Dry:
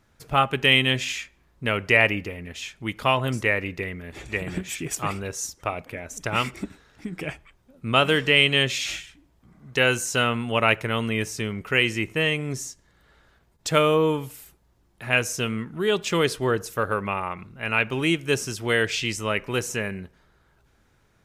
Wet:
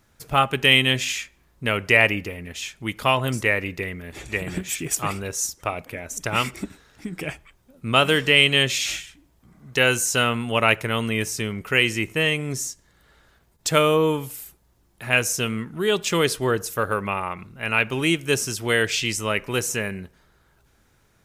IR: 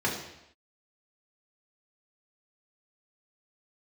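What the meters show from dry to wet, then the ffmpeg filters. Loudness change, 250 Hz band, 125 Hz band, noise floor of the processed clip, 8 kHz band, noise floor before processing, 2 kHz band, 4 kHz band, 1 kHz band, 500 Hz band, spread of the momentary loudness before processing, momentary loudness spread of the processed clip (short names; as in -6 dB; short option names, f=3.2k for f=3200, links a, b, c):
+2.0 dB, +1.0 dB, +1.0 dB, -62 dBFS, +5.5 dB, -63 dBFS, +2.0 dB, +2.5 dB, +1.0 dB, +1.0 dB, 16 LU, 15 LU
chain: -af "highshelf=f=6.5k:g=8.5,volume=1dB"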